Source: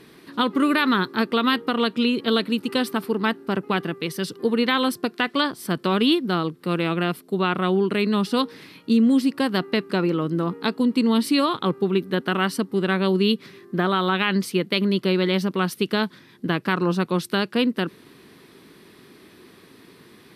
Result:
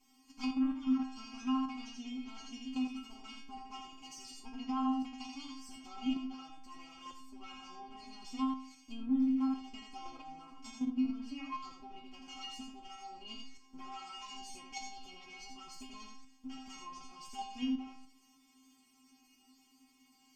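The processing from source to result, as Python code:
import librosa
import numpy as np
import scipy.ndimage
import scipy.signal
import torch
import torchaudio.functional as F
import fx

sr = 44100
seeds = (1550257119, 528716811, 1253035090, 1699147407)

p1 = fx.lower_of_two(x, sr, delay_ms=7.7)
p2 = p1 + fx.echo_single(p1, sr, ms=83, db=-4.0, dry=0)
p3 = fx.env_lowpass_down(p2, sr, base_hz=1800.0, full_db=-17.5)
p4 = fx.bass_treble(p3, sr, bass_db=-12, treble_db=3)
p5 = fx.stiff_resonator(p4, sr, f0_hz=260.0, decay_s=0.53, stiffness=0.002)
p6 = fx.level_steps(p5, sr, step_db=20)
p7 = p5 + (p6 * librosa.db_to_amplitude(-2.5))
p8 = fx.peak_eq(p7, sr, hz=1400.0, db=-11.5, octaves=1.7)
p9 = fx.fixed_phaser(p8, sr, hz=2600.0, stages=8)
y = p9 * librosa.db_to_amplitude(6.0)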